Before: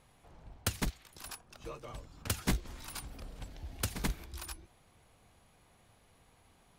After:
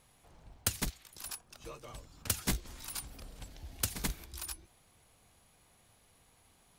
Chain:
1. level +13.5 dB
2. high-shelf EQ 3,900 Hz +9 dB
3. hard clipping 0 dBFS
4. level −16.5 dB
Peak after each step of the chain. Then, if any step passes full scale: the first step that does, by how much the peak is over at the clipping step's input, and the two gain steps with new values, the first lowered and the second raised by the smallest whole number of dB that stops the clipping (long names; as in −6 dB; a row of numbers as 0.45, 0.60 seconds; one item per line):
−2.5, +3.0, 0.0, −16.5 dBFS
step 2, 3.0 dB
step 1 +10.5 dB, step 4 −13.5 dB